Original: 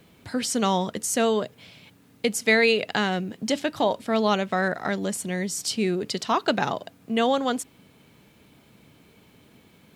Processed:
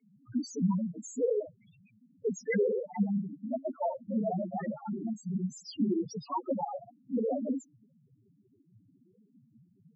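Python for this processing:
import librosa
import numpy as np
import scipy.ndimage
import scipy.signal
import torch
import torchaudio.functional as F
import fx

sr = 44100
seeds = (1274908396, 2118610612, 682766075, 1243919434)

y = fx.noise_vocoder(x, sr, seeds[0], bands=16)
y = fx.spec_topn(y, sr, count=2)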